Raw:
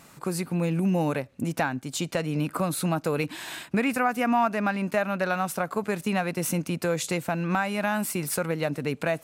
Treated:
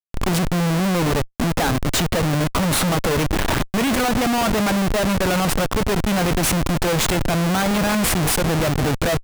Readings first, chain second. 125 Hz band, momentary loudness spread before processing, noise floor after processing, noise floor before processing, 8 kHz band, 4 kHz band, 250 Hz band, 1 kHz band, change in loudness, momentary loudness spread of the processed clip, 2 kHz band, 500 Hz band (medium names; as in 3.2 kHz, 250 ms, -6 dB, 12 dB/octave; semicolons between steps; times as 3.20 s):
+9.5 dB, 5 LU, -39 dBFS, -52 dBFS, +10.5 dB, +13.5 dB, +7.0 dB, +5.5 dB, +7.5 dB, 2 LU, +6.0 dB, +6.0 dB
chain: added noise brown -44 dBFS; Schmitt trigger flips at -33.5 dBFS; trim +8.5 dB